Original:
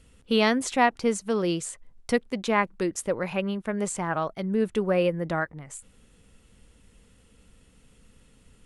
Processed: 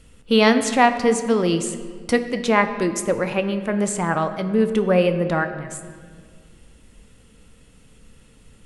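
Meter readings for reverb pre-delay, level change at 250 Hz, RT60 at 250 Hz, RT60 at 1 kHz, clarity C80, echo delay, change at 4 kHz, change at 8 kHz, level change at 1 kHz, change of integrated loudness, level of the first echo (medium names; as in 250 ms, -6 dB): 7 ms, +6.5 dB, 2.5 s, 1.7 s, 11.5 dB, no echo, +6.0 dB, +6.0 dB, +6.0 dB, +6.5 dB, no echo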